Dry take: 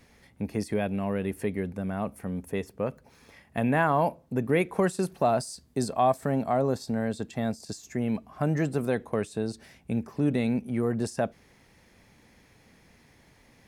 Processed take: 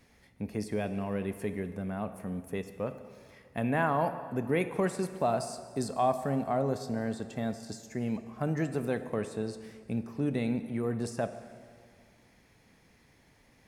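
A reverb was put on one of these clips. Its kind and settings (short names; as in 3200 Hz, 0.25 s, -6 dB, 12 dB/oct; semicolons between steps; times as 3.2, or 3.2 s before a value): plate-style reverb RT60 2 s, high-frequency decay 0.8×, DRR 9.5 dB; gain -4.5 dB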